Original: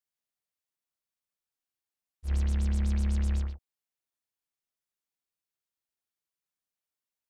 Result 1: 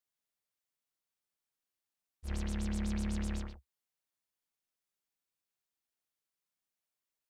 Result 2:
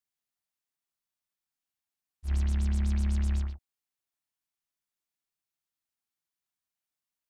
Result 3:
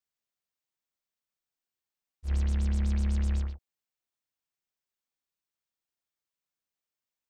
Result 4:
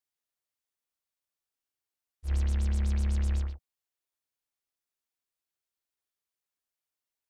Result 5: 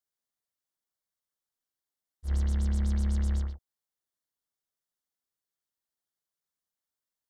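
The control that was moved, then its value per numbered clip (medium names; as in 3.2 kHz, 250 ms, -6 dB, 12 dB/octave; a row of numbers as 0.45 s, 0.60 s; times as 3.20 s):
peaking EQ, frequency: 67 Hz, 490 Hz, 11 kHz, 180 Hz, 2.5 kHz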